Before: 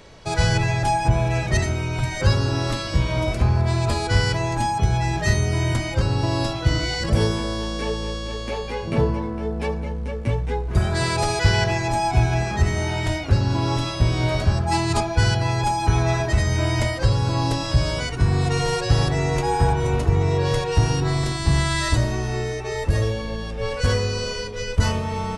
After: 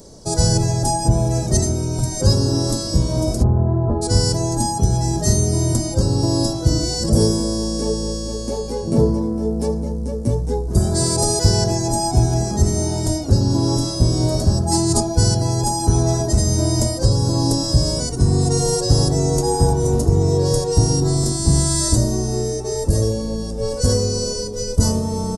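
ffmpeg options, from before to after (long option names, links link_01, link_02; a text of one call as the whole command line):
ffmpeg -i in.wav -filter_complex "[0:a]asplit=3[link_01][link_02][link_03];[link_01]afade=type=out:start_time=3.42:duration=0.02[link_04];[link_02]lowpass=frequency=1400:width=0.5412,lowpass=frequency=1400:width=1.3066,afade=type=in:start_time=3.42:duration=0.02,afade=type=out:start_time=4.01:duration=0.02[link_05];[link_03]afade=type=in:start_time=4.01:duration=0.02[link_06];[link_04][link_05][link_06]amix=inputs=3:normalize=0,firequalizer=gain_entry='entry(120,0);entry(220,6);entry(1200,-10);entry(2400,-22);entry(5000,6);entry(8800,12)':delay=0.05:min_phase=1,volume=2.5dB" out.wav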